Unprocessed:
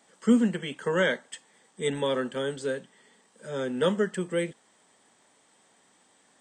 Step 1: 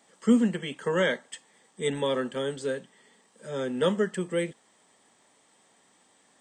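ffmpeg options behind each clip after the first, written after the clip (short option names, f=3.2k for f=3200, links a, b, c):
-af "bandreject=f=1.5k:w=17"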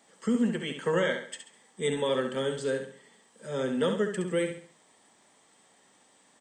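-filter_complex "[0:a]alimiter=limit=-18dB:level=0:latency=1:release=287,asplit=2[a][b];[b]aecho=0:1:68|136|204|272:0.447|0.165|0.0612|0.0226[c];[a][c]amix=inputs=2:normalize=0"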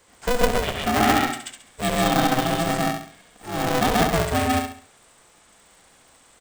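-af "aecho=1:1:134.1|204.1:1|0.282,aeval=exprs='val(0)*sgn(sin(2*PI*250*n/s))':c=same,volume=4.5dB"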